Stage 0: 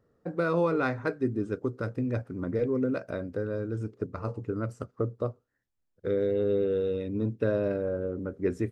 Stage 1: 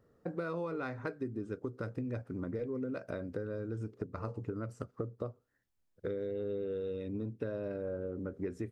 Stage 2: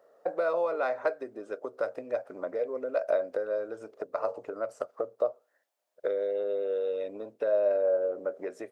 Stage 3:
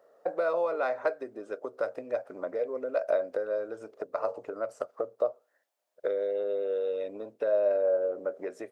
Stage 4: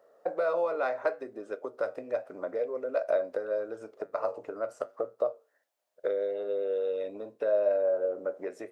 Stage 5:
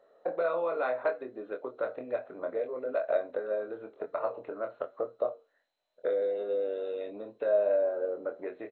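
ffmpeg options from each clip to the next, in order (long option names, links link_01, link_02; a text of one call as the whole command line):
ffmpeg -i in.wav -af "acompressor=threshold=-36dB:ratio=6,volume=1dB" out.wav
ffmpeg -i in.wav -af "highpass=frequency=620:width_type=q:width=4.9,volume=5dB" out.wav
ffmpeg -i in.wav -af anull out.wav
ffmpeg -i in.wav -af "flanger=delay=8.7:depth=2.6:regen=-78:speed=0.78:shape=triangular,volume=4dB" out.wav
ffmpeg -i in.wav -filter_complex "[0:a]asplit=2[link_01][link_02];[link_02]adelay=24,volume=-5.5dB[link_03];[link_01][link_03]amix=inputs=2:normalize=0,volume=-1.5dB" -ar 16000 -c:a mp2 -b:a 32k out.mp2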